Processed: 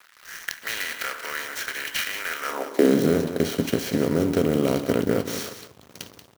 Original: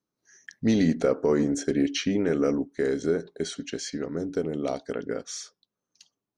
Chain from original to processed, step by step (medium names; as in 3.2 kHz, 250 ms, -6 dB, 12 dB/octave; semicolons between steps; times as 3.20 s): spectral levelling over time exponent 0.4; in parallel at +1 dB: compression, threshold -27 dBFS, peak gain reduction 12.5 dB; on the sum: crossover distortion -33.5 dBFS; high-pass sweep 1.6 kHz -> 85 Hz, 2.42–3.13 s; on a send: delay 183 ms -10.5 dB; on the sum: sampling jitter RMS 0.026 ms; trim -3.5 dB